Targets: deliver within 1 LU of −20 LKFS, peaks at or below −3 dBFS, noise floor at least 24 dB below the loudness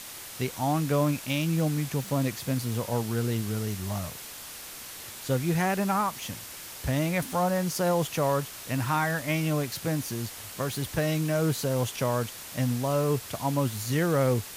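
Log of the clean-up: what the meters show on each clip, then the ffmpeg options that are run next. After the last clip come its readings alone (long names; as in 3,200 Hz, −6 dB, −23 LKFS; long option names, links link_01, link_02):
background noise floor −42 dBFS; target noise floor −53 dBFS; integrated loudness −28.5 LKFS; sample peak −15.5 dBFS; target loudness −20.0 LKFS
→ -af "afftdn=noise_reduction=11:noise_floor=-42"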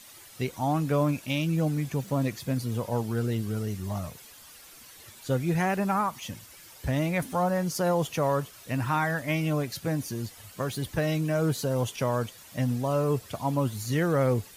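background noise floor −50 dBFS; target noise floor −53 dBFS
→ -af "afftdn=noise_reduction=6:noise_floor=-50"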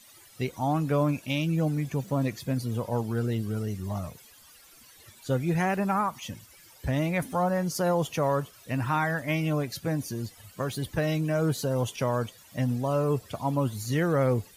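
background noise floor −54 dBFS; integrated loudness −28.5 LKFS; sample peak −16.0 dBFS; target loudness −20.0 LKFS
→ -af "volume=8.5dB"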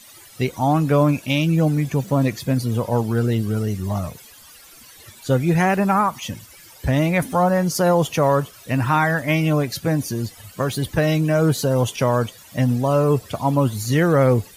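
integrated loudness −20.0 LKFS; sample peak −7.5 dBFS; background noise floor −46 dBFS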